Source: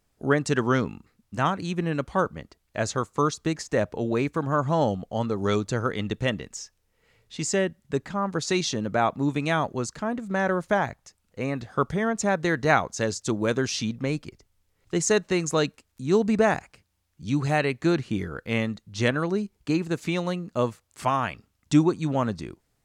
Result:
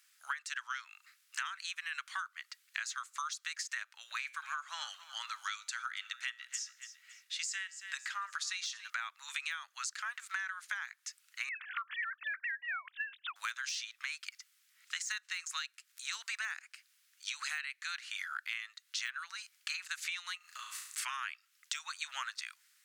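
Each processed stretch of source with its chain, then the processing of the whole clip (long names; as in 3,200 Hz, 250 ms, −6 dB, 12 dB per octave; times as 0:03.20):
0:03.83–0:08.90: tuned comb filter 120 Hz, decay 0.38 s, mix 40% + repeating echo 278 ms, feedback 36%, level −19.5 dB
0:11.49–0:13.36: three sine waves on the formant tracks + parametric band 710 Hz −2 dB 2.5 octaves + downward compressor 4 to 1, threshold −25 dBFS
0:20.37–0:21.03: high-shelf EQ 6,300 Hz +4.5 dB + downward compressor 8 to 1, threshold −37 dBFS + flutter between parallel walls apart 6.1 metres, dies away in 0.69 s
whole clip: de-essing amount 65%; Butterworth high-pass 1,400 Hz 36 dB per octave; downward compressor 16 to 1, threshold −45 dBFS; level +9.5 dB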